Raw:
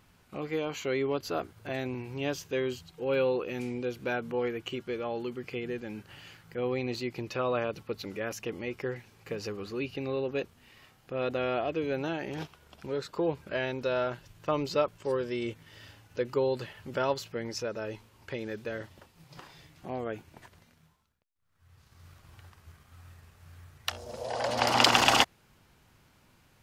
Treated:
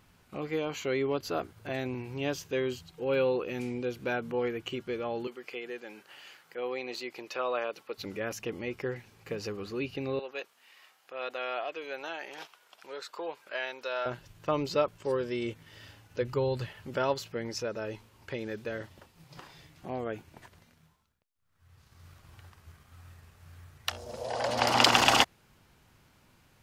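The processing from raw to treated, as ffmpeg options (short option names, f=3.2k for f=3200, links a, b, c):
-filter_complex "[0:a]asettb=1/sr,asplit=3[a][b][c];[a]atrim=end=5.274[d];[b]atrim=start=5.27:end=7.98,asetpts=PTS-STARTPTS,afade=t=in:d=0.004:c=qsin,afade=t=out:st=2.706:d=0.004:c=qsin,highpass=470[e];[c]atrim=start=7.976[f];[d][e]acrossfade=d=0.004:c1=hsin:c2=qsin[g];[g][f]acrossfade=d=0.004:c1=qsin:c2=hsin,asettb=1/sr,asplit=3[h][i][j];[h]atrim=end=10.194[k];[i]atrim=start=10.19:end=14.06,asetpts=PTS-STARTPTS,afade=t=in:d=0.004:c=qsin,afade=t=out:st=3.866:d=0.004:c=qsin,highpass=730[l];[j]atrim=start=14.056[m];[k][l]acrossfade=d=0.004:c1=hsin:c2=qsin[n];[n][m]acrossfade=d=0.004:c1=qsin:c2=hsin,asplit=3[o][p][q];[o]afade=t=out:st=16.21:d=0.02[r];[p]asubboost=boost=4:cutoff=130,afade=t=in:st=16.21:d=0.02,afade=t=out:st=16.68:d=0.02[s];[q]afade=t=in:st=16.68:d=0.02[t];[r][s][t]amix=inputs=3:normalize=0"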